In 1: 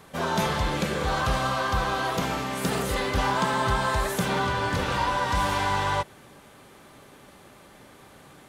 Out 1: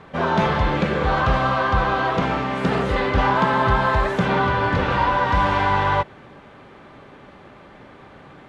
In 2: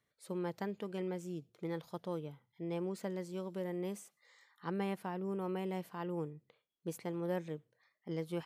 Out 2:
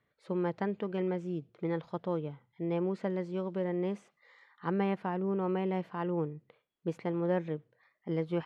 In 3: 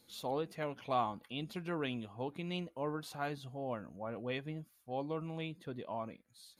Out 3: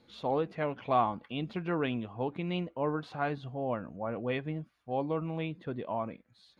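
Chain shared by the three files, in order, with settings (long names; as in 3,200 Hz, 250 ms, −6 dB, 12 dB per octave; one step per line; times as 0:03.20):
low-pass filter 2,600 Hz 12 dB per octave
level +6.5 dB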